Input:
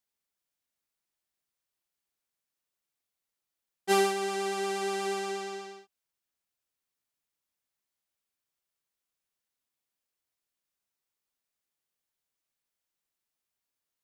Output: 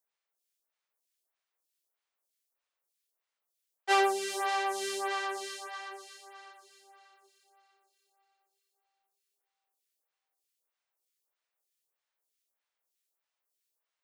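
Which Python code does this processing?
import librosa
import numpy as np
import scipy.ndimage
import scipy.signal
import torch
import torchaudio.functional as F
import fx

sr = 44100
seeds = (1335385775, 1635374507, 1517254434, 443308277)

y = scipy.signal.sosfilt(scipy.signal.butter(4, 380.0, 'highpass', fs=sr, output='sos'), x)
y = fx.echo_diffused(y, sr, ms=484, feedback_pct=44, wet_db=-7)
y = fx.stagger_phaser(y, sr, hz=1.6)
y = F.gain(torch.from_numpy(y), 3.5).numpy()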